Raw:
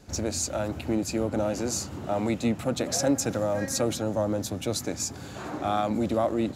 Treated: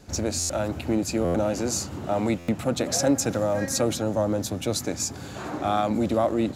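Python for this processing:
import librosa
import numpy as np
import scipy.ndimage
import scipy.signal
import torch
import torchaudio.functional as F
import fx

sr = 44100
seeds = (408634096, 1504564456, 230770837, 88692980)

y = fx.buffer_glitch(x, sr, at_s=(0.39, 1.24, 2.38), block=512, repeats=8)
y = F.gain(torch.from_numpy(y), 2.5).numpy()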